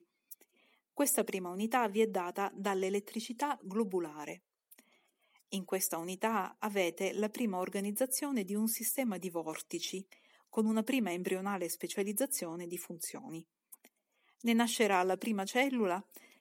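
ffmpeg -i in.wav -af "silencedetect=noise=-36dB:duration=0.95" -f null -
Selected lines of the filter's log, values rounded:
silence_start: 4.32
silence_end: 5.53 | silence_duration: 1.21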